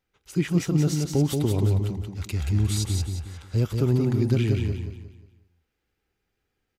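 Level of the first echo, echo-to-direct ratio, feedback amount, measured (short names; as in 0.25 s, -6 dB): -4.5 dB, -4.0 dB, 37%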